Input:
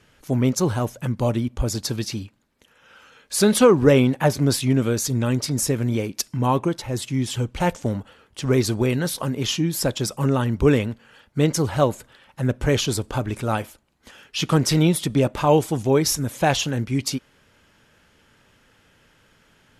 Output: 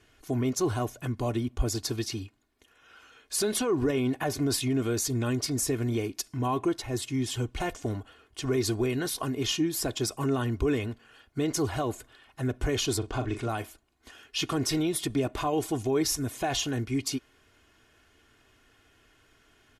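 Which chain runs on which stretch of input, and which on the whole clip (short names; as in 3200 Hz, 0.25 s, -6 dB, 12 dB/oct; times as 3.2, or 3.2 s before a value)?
12.98–13.49 LPF 6600 Hz + doubler 41 ms -10 dB
whole clip: limiter -14 dBFS; comb 2.8 ms, depth 65%; gain -5.5 dB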